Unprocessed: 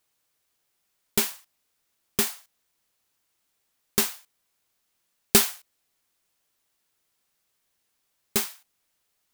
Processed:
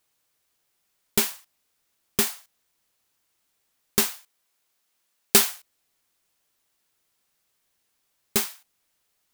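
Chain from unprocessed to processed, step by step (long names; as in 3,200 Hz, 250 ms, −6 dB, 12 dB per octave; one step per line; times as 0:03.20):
0:04.15–0:05.39: low-shelf EQ 200 Hz −10 dB
level +1.5 dB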